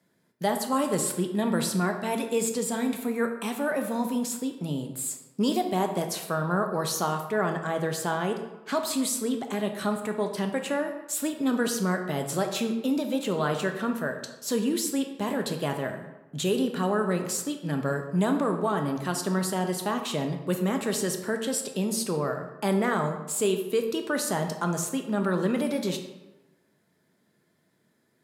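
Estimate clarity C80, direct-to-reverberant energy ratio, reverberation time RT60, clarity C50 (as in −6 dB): 9.5 dB, 4.5 dB, 1.1 s, 7.5 dB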